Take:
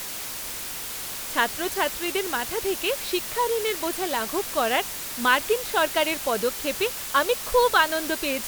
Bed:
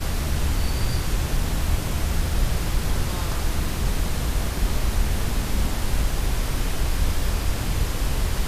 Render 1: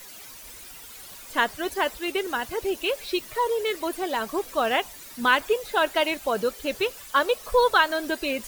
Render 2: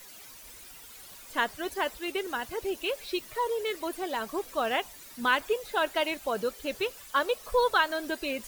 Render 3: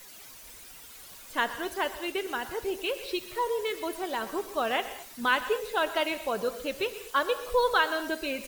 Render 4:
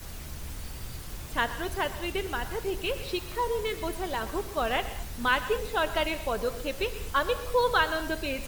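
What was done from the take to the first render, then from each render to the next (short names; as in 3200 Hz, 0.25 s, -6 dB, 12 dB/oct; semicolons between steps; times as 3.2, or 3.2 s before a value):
denoiser 13 dB, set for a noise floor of -34 dBFS
gain -5 dB
echo 0.122 s -17 dB; non-linear reverb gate 0.26 s flat, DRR 12 dB
add bed -16.5 dB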